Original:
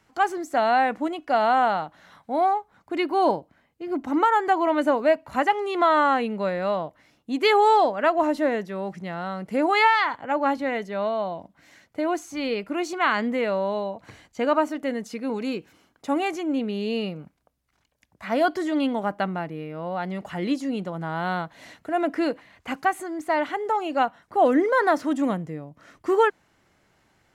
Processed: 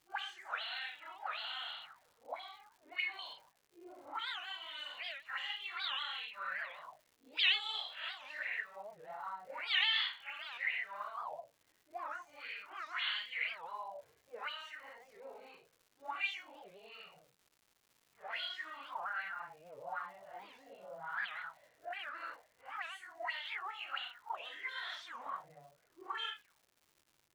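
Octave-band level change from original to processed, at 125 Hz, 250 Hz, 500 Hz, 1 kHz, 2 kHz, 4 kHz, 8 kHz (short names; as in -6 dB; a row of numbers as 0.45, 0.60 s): under -35 dB, under -40 dB, -29.5 dB, -22.0 dB, -10.0 dB, -1.5 dB, under -15 dB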